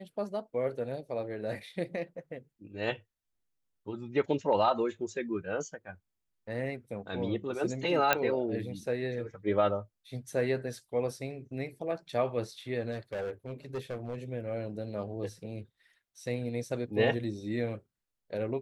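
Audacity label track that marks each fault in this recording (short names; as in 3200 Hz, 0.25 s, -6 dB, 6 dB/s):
8.130000	8.130000	pop -9 dBFS
12.910000	14.180000	clipped -31.5 dBFS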